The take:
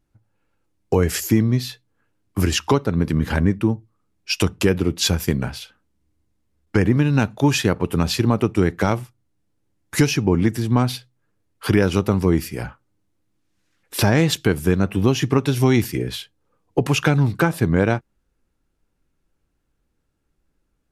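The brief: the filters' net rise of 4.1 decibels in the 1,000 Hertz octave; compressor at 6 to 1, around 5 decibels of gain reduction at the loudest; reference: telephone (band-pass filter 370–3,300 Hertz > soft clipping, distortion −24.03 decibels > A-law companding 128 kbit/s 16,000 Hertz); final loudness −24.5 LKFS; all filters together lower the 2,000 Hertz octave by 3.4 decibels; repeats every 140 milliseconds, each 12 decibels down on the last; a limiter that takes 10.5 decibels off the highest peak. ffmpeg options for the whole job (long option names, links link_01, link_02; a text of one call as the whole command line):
ffmpeg -i in.wav -af "equalizer=frequency=1000:width_type=o:gain=7,equalizer=frequency=2000:width_type=o:gain=-7,acompressor=threshold=-16dB:ratio=6,alimiter=limit=-15.5dB:level=0:latency=1,highpass=370,lowpass=3300,aecho=1:1:140|280|420:0.251|0.0628|0.0157,asoftclip=threshold=-18dB,volume=9dB" -ar 16000 -c:a pcm_alaw out.wav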